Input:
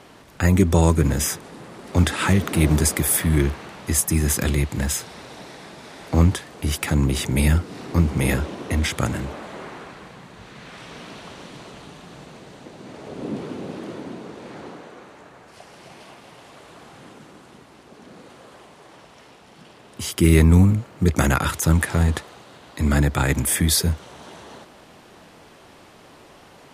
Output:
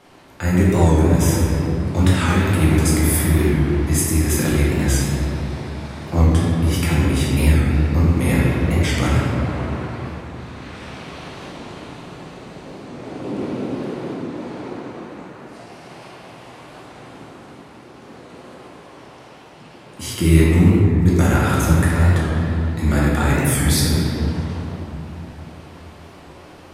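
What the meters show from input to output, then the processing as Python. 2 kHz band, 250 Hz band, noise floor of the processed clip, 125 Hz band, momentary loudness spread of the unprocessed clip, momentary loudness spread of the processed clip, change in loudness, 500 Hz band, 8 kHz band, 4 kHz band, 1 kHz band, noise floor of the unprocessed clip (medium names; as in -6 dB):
+2.5 dB, +4.0 dB, -42 dBFS, +4.0 dB, 22 LU, 19 LU, +2.5 dB, +4.0 dB, -1.0 dB, +1.0 dB, +3.5 dB, -48 dBFS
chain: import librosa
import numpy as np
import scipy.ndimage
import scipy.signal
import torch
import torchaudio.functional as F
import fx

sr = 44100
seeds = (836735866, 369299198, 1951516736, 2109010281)

p1 = fx.room_shoebox(x, sr, seeds[0], volume_m3=120.0, walls='hard', distance_m=0.88)
p2 = fx.rider(p1, sr, range_db=3, speed_s=0.5)
p3 = p1 + F.gain(torch.from_numpy(p2), 0.5).numpy()
p4 = fx.record_warp(p3, sr, rpm=45.0, depth_cents=100.0)
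y = F.gain(torch.from_numpy(p4), -11.0).numpy()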